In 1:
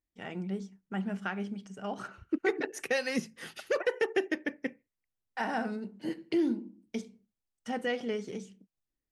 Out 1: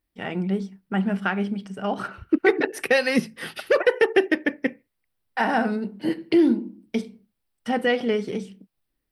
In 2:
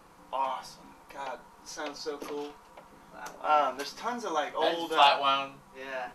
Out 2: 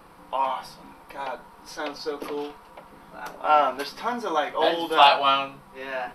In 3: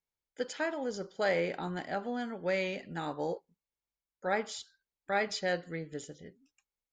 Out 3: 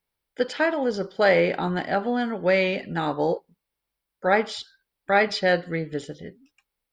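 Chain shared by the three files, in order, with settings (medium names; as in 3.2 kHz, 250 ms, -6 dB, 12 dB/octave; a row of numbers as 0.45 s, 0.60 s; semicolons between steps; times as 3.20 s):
peaking EQ 6.7 kHz -14.5 dB 0.36 oct; normalise loudness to -24 LUFS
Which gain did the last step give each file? +10.5 dB, +5.5 dB, +11.0 dB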